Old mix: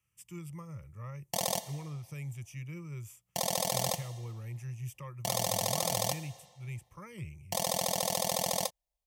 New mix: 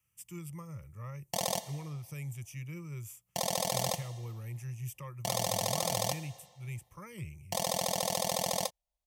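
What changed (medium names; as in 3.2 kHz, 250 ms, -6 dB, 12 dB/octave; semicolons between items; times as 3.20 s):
speech: add treble shelf 9.3 kHz +9 dB; background: add treble shelf 9.4 kHz -4 dB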